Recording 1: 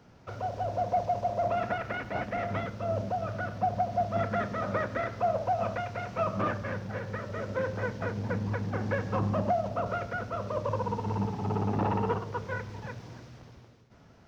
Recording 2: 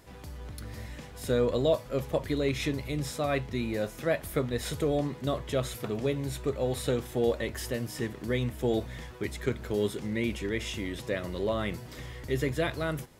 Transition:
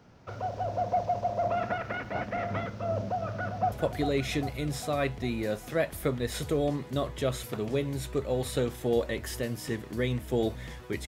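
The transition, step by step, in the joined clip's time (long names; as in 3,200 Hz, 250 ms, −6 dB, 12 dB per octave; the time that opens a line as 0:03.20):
recording 1
0:03.03–0:03.72: delay throw 400 ms, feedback 60%, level −8.5 dB
0:03.72: continue with recording 2 from 0:02.03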